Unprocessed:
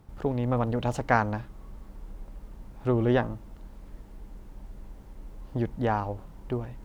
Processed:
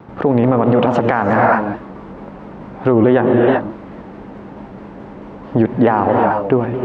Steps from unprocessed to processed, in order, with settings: band-pass 190–2100 Hz; gated-style reverb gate 400 ms rising, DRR 7 dB; compression 3:1, threshold -27 dBFS, peak gain reduction 8.5 dB; loudness maximiser +23 dB; vibrato with a chosen wave saw down 4.6 Hz, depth 100 cents; trim -1.5 dB

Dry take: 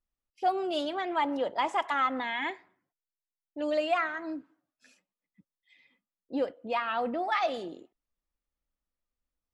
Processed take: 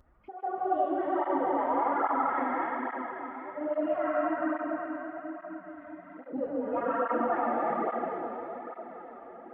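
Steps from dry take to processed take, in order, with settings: chunks repeated in reverse 193 ms, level -1 dB; compression 4:1, threshold -30 dBFS, peak gain reduction 9.5 dB; low-pass 1.5 kHz 24 dB/octave; pre-echo 143 ms -14.5 dB; plate-style reverb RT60 4.1 s, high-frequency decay 1×, DRR -7.5 dB; upward compressor, threshold -35 dBFS; cancelling through-zero flanger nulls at 1.2 Hz, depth 6.3 ms

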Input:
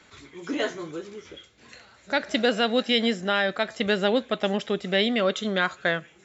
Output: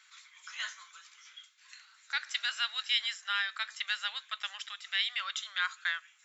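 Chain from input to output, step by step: steep high-pass 1.1 kHz 36 dB/octave; treble shelf 3.7 kHz +7 dB; trim -7 dB

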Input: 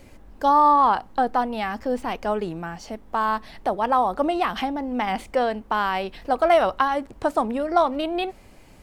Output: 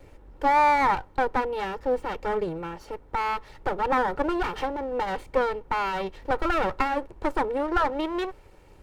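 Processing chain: comb filter that takes the minimum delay 2.2 ms; treble shelf 2.4 kHz -10 dB

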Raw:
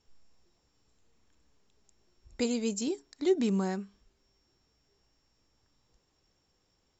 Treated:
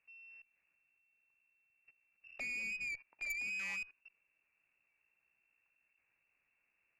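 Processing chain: level held to a coarse grid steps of 21 dB; frequency inversion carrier 2.7 kHz; valve stage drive 41 dB, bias 0.3; trim +5 dB

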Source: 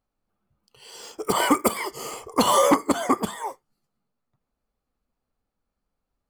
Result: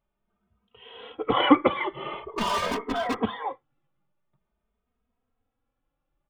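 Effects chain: resampled via 8 kHz; 2.20–3.19 s: overload inside the chain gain 26 dB; endless flanger 2.9 ms +0.46 Hz; trim +4.5 dB

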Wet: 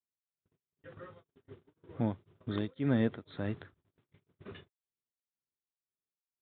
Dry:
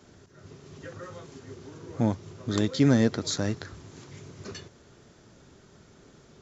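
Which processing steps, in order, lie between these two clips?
gate -42 dBFS, range -46 dB; resampled via 8 kHz; tremolo of two beating tones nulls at 2 Hz; trim -6.5 dB

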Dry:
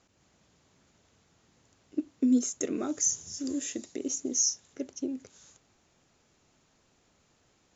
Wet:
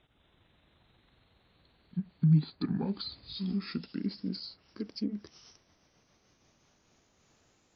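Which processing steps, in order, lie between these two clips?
pitch bend over the whole clip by -11.5 st ending unshifted; low-pass that closes with the level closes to 1.8 kHz, closed at -28.5 dBFS; trim +1 dB

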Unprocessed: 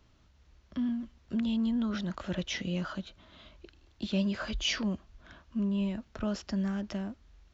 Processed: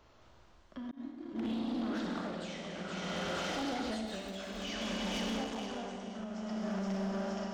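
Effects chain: bass shelf 350 Hz -3 dB; ever faster or slower copies 216 ms, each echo +2 st, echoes 3; peaking EQ 740 Hz +9.5 dB 2.2 oct; hum notches 50/100/150/200/250/300 Hz; two-band feedback delay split 680 Hz, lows 118 ms, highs 470 ms, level -5 dB; Schroeder reverb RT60 3.1 s, combs from 32 ms, DRR -1.5 dB; 0.91–1.42 s: expander -20 dBFS; 4.04–4.72 s: crackle 390 per s -32 dBFS; compression 16:1, threshold -30 dBFS, peak gain reduction 13 dB; tremolo 0.57 Hz, depth 64%; hard clipper -31 dBFS, distortion -17 dB; 5.44–6.07 s: transformer saturation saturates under 370 Hz

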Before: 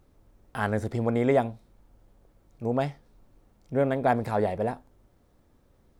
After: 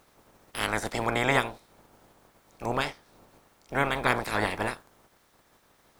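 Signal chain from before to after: spectral peaks clipped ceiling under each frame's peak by 27 dB; trim -1.5 dB

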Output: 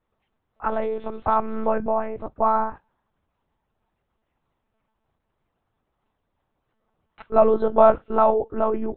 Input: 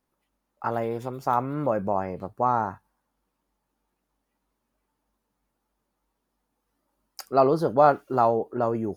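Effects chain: peaking EQ 110 Hz -12.5 dB 0.35 oct; monotone LPC vocoder at 8 kHz 220 Hz; trim +3.5 dB

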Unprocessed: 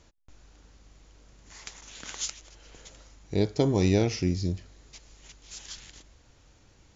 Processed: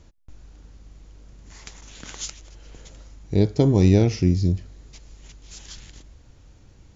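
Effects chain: bass shelf 350 Hz +10 dB

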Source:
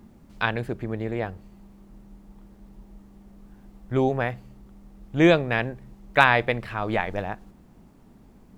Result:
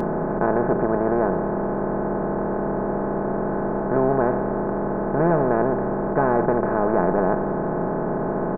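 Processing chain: spectral levelling over time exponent 0.2; Gaussian low-pass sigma 8.2 samples; comb 4.7 ms, depth 59%; tape noise reduction on one side only decoder only; trim -3.5 dB

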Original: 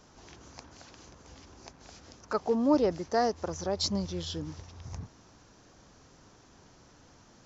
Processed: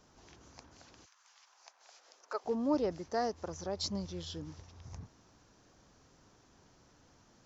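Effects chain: 1.04–2.44 s: high-pass 1.2 kHz -> 380 Hz 24 dB/octave; trim -6.5 dB

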